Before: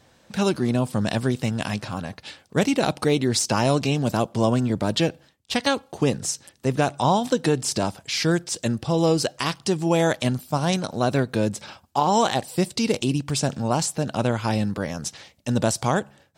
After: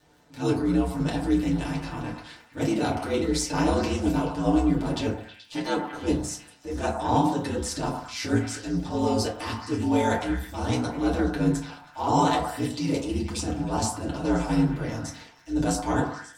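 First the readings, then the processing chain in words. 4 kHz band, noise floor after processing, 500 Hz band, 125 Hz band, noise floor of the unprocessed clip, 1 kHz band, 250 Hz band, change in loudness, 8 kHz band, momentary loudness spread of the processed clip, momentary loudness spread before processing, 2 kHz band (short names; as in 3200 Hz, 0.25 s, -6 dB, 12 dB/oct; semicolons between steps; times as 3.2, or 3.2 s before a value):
-7.5 dB, -52 dBFS, -5.0 dB, -4.5 dB, -59 dBFS, -2.5 dB, -1.0 dB, -3.0 dB, -6.0 dB, 9 LU, 7 LU, -5.0 dB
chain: transient shaper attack -11 dB, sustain +1 dB; ring modulator 61 Hz; crackle 32/s -42 dBFS; delay with a stepping band-pass 0.107 s, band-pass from 920 Hz, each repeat 0.7 oct, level -4 dB; FDN reverb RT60 0.38 s, low-frequency decay 1.35×, high-frequency decay 0.55×, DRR -5.5 dB; gain -7 dB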